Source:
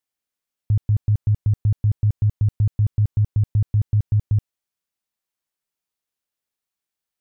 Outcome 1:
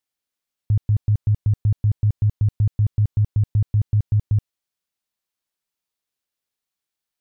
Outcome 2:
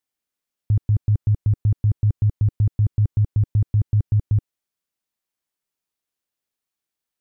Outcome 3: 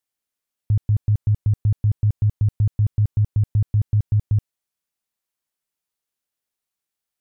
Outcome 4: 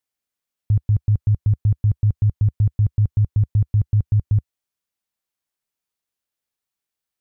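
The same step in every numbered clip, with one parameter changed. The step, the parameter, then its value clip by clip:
parametric band, centre frequency: 4,000, 300, 11,000, 75 Hertz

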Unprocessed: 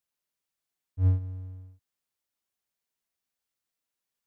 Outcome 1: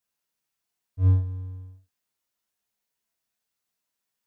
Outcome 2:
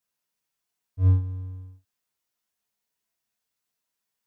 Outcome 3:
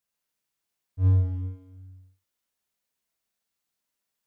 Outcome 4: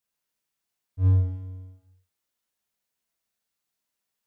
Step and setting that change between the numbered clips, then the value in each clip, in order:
reverb whose tail is shaped and stops, gate: 120, 80, 470, 320 milliseconds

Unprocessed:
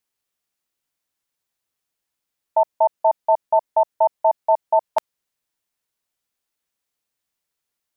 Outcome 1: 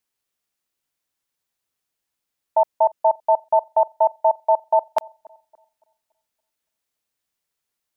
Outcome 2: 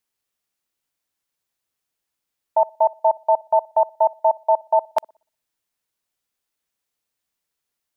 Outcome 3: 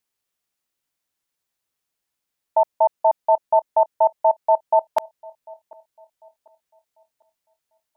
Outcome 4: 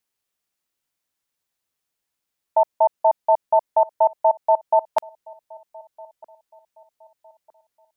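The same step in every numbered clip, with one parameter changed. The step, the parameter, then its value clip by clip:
delay with a band-pass on its return, delay time: 284, 61, 746, 1,259 milliseconds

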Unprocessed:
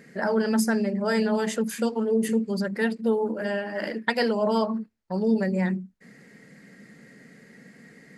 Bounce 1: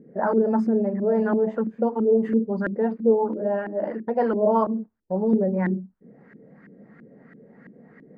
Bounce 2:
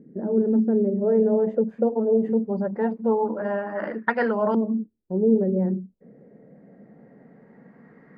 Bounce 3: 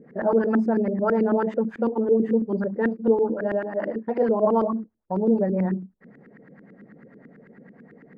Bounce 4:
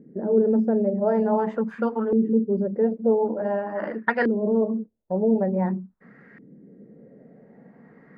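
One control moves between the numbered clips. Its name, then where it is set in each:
auto-filter low-pass, speed: 3, 0.22, 9.1, 0.47 Hertz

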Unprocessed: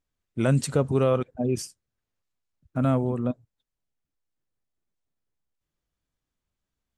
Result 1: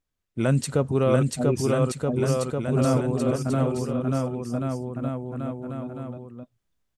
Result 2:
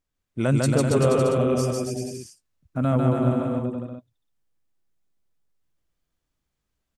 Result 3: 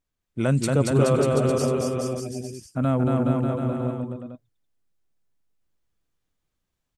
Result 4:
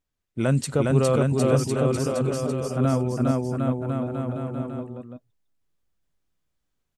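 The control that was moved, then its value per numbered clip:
bouncing-ball delay, first gap: 690, 150, 230, 410 milliseconds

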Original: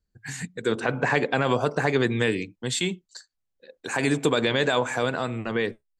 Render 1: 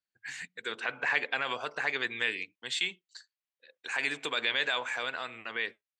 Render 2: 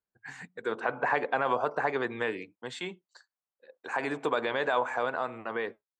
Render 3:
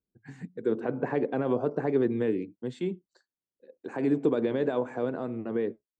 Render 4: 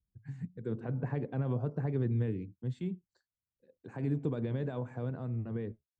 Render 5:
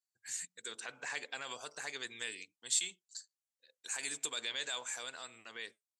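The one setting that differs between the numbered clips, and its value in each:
resonant band-pass, frequency: 2,500, 960, 320, 100, 8,000 Hertz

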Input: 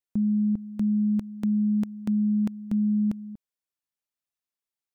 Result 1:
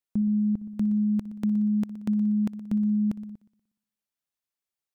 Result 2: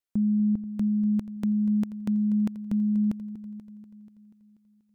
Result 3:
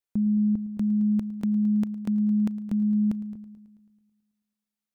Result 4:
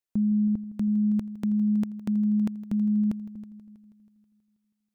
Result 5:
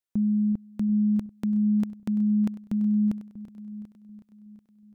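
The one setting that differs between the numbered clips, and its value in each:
echo machine with several playback heads, delay time: 60, 242, 109, 161, 369 milliseconds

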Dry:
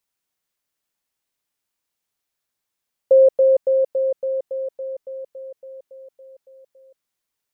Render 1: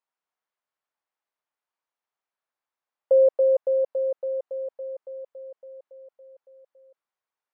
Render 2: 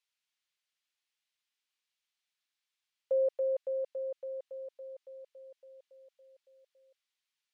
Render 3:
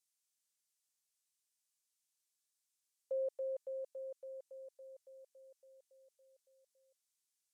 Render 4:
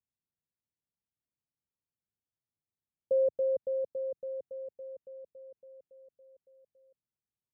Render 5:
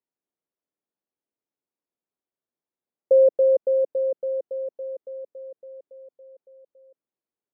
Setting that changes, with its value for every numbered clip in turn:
resonant band-pass, frequency: 960, 3,100, 7,800, 110, 340 Hertz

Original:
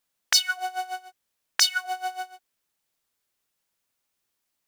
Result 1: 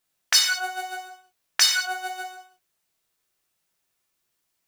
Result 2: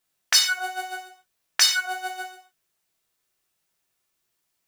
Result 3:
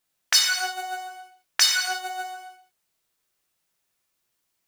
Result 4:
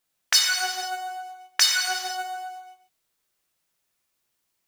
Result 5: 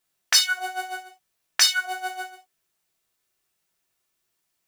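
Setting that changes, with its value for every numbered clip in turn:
reverb whose tail is shaped and stops, gate: 230, 160, 360, 540, 100 milliseconds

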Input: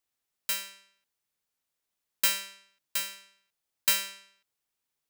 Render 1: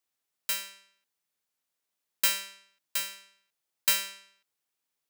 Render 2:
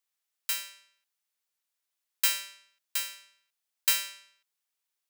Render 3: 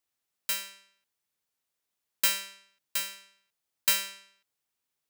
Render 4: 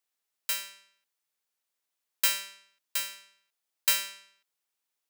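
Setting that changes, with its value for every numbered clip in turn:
high-pass filter, corner frequency: 150, 1,100, 44, 430 Hertz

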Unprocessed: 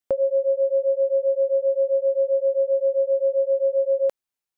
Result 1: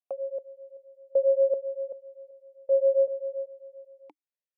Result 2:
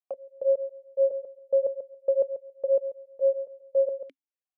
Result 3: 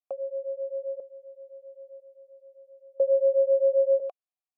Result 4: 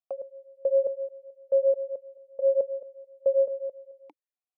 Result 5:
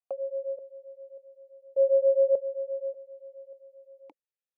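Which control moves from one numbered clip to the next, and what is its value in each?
formant filter that steps through the vowels, speed: 2.6, 7.2, 1, 4.6, 1.7 Hertz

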